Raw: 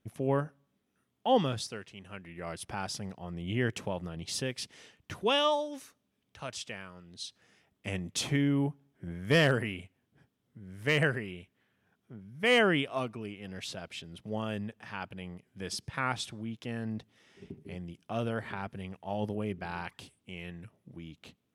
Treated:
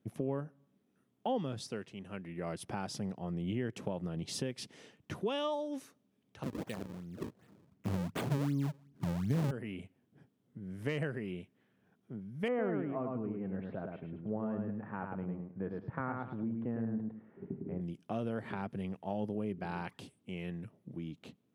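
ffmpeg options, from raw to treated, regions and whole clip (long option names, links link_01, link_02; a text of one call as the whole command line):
ffmpeg -i in.wav -filter_complex "[0:a]asettb=1/sr,asplit=3[link_01][link_02][link_03];[link_01]atrim=end=6.434[link_04];[link_02]atrim=start=6.43:end=9.51,asetpts=PTS-STARTPTS,afade=type=in:duration=0.004:curve=qsin,afade=type=out:start_time=3.076:duration=0.004:curve=qsin,asubboost=boost=6.5:cutoff=230,acrusher=samples=36:mix=1:aa=0.000001:lfo=1:lforange=57.6:lforate=2.7[link_05];[link_03]atrim=start=9.506[link_06];[link_04][link_05]acrossfade=duration=0.004:curve1=hsin:curve2=qsin[link_07];[link_07][link_06]acrossfade=duration=0.004:curve1=qsin:curve2=hsin,asettb=1/sr,asplit=3[link_08][link_09][link_10];[link_08]atrim=end=12.484[link_11];[link_09]atrim=start=12.48:end=17.81,asetpts=PTS-STARTPTS,afade=type=in:duration=0.004:curve=qsin,afade=type=out:start_time=5.326:duration=0.004:curve=qsin,lowpass=frequency=1600:width=0.5412,lowpass=frequency=1600:width=1.3066,aecho=1:1:105|210|315:0.631|0.145|0.0334,atrim=end_sample=235053[link_12];[link_10]atrim=start=17.806[link_13];[link_11][link_12]acrossfade=duration=0.004:curve1=hsin:curve2=qsin[link_14];[link_14][link_13]acrossfade=duration=0.004:curve1=qsin:curve2=hsin,highpass=150,tiltshelf=frequency=660:gain=6,acompressor=threshold=-34dB:ratio=4,volume=1dB" out.wav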